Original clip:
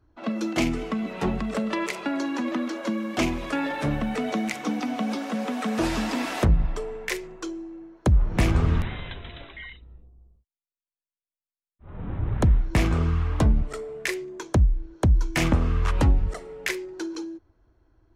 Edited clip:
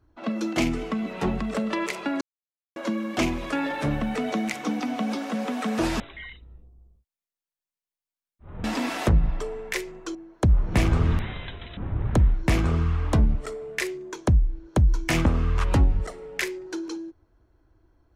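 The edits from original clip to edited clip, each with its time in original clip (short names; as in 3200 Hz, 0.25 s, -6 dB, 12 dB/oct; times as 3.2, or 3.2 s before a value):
2.21–2.76 mute
7.51–7.78 cut
9.4–12.04 move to 6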